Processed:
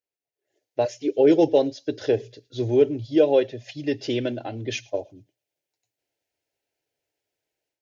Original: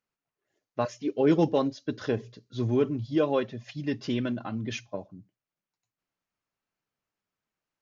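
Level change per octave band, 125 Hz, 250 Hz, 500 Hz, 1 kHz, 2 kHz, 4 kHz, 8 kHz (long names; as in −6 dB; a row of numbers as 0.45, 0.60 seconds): −1.0 dB, +3.0 dB, +8.0 dB, +1.5 dB, +2.5 dB, +5.5 dB, can't be measured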